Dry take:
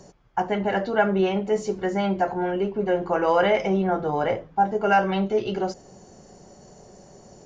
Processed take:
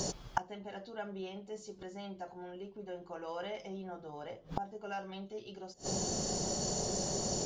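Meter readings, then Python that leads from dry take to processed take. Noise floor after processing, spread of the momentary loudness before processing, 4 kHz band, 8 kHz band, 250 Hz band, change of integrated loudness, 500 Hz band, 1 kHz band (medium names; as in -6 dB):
-55 dBFS, 7 LU, -4.0 dB, no reading, -16.0 dB, -16.0 dB, -18.0 dB, -17.5 dB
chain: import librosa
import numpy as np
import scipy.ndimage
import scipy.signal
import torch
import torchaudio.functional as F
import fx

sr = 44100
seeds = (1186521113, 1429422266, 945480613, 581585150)

y = fx.gate_flip(x, sr, shuts_db=-26.0, range_db=-32)
y = fx.high_shelf_res(y, sr, hz=2800.0, db=7.5, q=1.5)
y = F.gain(torch.from_numpy(y), 11.0).numpy()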